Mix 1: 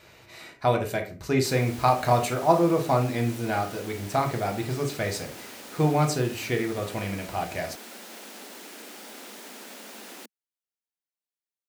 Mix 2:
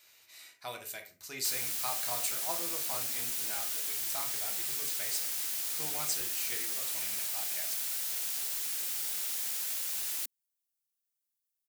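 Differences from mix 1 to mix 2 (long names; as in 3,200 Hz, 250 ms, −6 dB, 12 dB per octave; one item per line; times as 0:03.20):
background +10.0 dB
master: add first-order pre-emphasis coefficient 0.97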